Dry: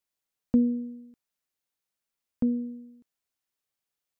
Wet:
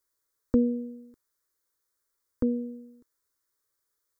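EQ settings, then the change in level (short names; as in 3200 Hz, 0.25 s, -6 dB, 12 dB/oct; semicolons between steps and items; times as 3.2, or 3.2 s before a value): fixed phaser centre 730 Hz, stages 6; +8.0 dB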